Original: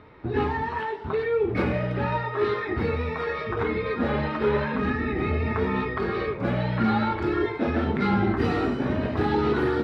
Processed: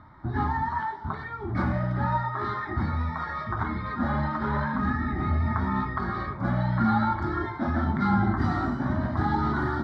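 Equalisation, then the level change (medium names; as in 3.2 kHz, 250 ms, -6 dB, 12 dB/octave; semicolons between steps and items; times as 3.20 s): distance through air 64 m; static phaser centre 1.1 kHz, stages 4; +2.5 dB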